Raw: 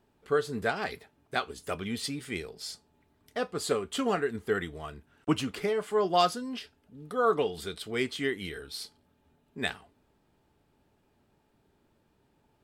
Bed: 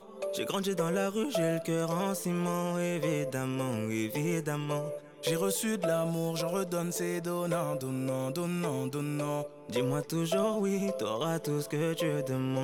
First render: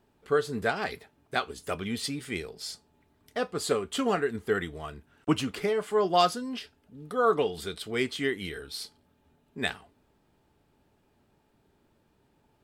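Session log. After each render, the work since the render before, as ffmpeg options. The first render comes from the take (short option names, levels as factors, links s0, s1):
-af "volume=1.19"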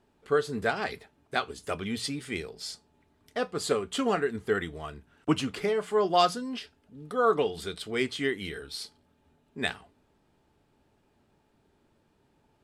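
-af "lowpass=11000,bandreject=f=60:t=h:w=6,bandreject=f=120:t=h:w=6,bandreject=f=180:t=h:w=6"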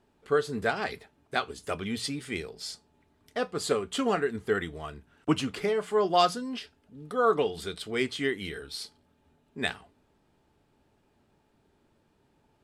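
-af anull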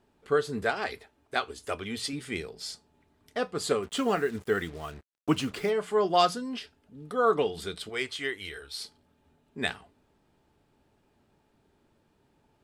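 -filter_complex "[0:a]asettb=1/sr,asplit=3[s0][s1][s2];[s0]atrim=end=0.634[s3];[s1]atrim=start=0.63:end=2.13,asetpts=PTS-STARTPTS,afade=t=in:d=0.004:c=qsin,afade=t=out:st=1.496:d=0.004:c=qsin,equalizer=f=160:t=o:w=0.77:g=-10.5[s4];[s2]atrim=start=2.126[s5];[s3][s4]acrossfade=d=0.004:c1=hsin:c2=qsin[s6];[s6][s5]acrossfade=d=0.004:c1=qsin:c2=hsin,asplit=3[s7][s8][s9];[s7]afade=t=out:st=3.82:d=0.02[s10];[s8]acrusher=bits=7:mix=0:aa=0.5,afade=t=in:st=3.82:d=0.02,afade=t=out:st=5.69:d=0.02[s11];[s9]afade=t=in:st=5.69:d=0.02[s12];[s10][s11][s12]amix=inputs=3:normalize=0,asettb=1/sr,asplit=3[s13][s14][s15];[s13]atrim=end=7.894[s16];[s14]atrim=start=7.89:end=8.78,asetpts=PTS-STARTPTS,afade=t=in:d=0.004:c=qsin,afade=t=out:st=0.886:d=0.004:c=qsin,equalizer=f=200:t=o:w=1.6:g=-14.5[s17];[s15]atrim=start=8.776[s18];[s16][s17]acrossfade=d=0.004:c1=hsin:c2=qsin[s19];[s19][s18]acrossfade=d=0.004:c1=qsin:c2=hsin"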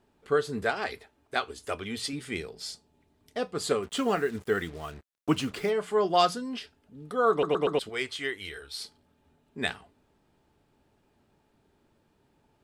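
-filter_complex "[0:a]asettb=1/sr,asplit=3[s0][s1][s2];[s0]atrim=end=2.704[s3];[s1]atrim=start=2.7:end=3.53,asetpts=PTS-STARTPTS,afade=t=in:d=0.004:c=qsin,afade=t=out:st=0.826:d=0.004:c=qsin,equalizer=f=1400:w=1.1:g=-5.5[s4];[s2]atrim=start=3.526[s5];[s3][s4]acrossfade=d=0.004:c1=hsin:c2=qsin[s6];[s6][s5]acrossfade=d=0.004:c1=qsin:c2=hsin,asplit=5[s7][s8][s9][s10][s11];[s7]atrim=end=7.432[s12];[s8]atrim=start=7.308:end=7.432[s13];[s9]atrim=start=7.308:end=7.432[s14];[s10]atrim=start=7.308:end=7.432[s15];[s11]atrim=start=7.788[s16];[s12][s13]acrossfade=d=0.004:c1=hsin:c2=hsin[s17];[s17][s14]acrossfade=d=0.004:c1=hsin:c2=hsin[s18];[s18][s15]acrossfade=d=0.004:c1=hsin:c2=hsin[s19];[s19][s16]acrossfade=d=0.004:c1=hsin:c2=hsin"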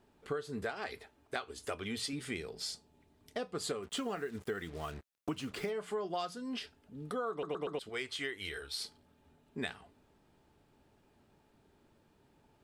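-af "acompressor=threshold=0.0178:ratio=6"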